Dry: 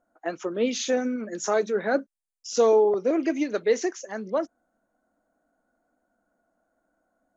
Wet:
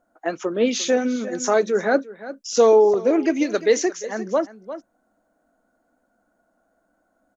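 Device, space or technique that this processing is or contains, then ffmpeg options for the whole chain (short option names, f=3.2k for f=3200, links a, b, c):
ducked delay: -filter_complex "[0:a]asplit=3[a][b][c];[b]adelay=350,volume=-7dB[d];[c]apad=whole_len=340081[e];[d][e]sidechaincompress=threshold=-32dB:ratio=5:attack=11:release=713[f];[a][f]amix=inputs=2:normalize=0,asettb=1/sr,asplit=3[g][h][i];[g]atrim=end=3.424[j];[h]atrim=start=3.42:end=3.82,asetpts=PTS-STARTPTS,afade=t=in:d=0.004:c=qsin,afade=t=out:st=0.396:d=0.004:c=qsin,aemphasis=mode=production:type=cd[k];[i]atrim=start=3.816[l];[j][k]acrossfade=d=0.004:c1=hsin:c2=qsin[m];[m][l]acrossfade=d=0.004:c1=qsin:c2=hsin,volume=5dB"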